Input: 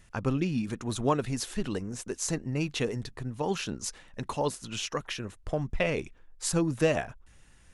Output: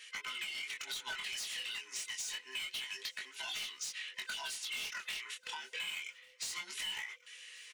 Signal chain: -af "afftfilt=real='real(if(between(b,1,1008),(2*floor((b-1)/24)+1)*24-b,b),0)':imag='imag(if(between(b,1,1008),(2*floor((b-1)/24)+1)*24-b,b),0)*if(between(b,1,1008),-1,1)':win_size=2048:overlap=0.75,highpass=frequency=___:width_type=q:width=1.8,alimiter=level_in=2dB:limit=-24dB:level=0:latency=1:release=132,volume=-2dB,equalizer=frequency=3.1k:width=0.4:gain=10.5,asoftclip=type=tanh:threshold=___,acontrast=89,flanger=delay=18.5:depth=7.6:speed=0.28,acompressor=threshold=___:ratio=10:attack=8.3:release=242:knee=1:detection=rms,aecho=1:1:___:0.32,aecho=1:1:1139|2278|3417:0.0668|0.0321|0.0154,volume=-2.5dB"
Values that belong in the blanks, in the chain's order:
2.4k, -32.5dB, -35dB, 4.7